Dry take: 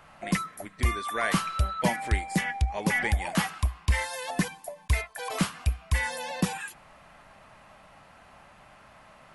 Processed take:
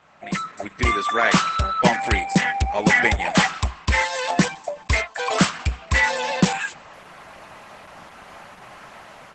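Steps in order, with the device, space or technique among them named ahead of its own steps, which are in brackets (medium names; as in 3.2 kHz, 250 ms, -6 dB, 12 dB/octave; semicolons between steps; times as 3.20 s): 0.92–1.46 s: high-pass 99 Hz 24 dB/octave; video call (high-pass 180 Hz 6 dB/octave; level rider gain up to 12.5 dB; Opus 12 kbps 48 kHz)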